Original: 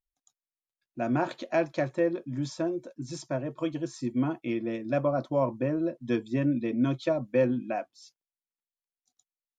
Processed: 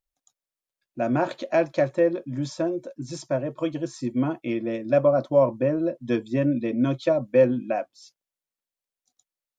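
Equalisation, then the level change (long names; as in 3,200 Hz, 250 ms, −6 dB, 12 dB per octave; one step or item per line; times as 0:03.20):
parametric band 560 Hz +6.5 dB 0.29 octaves
+3.0 dB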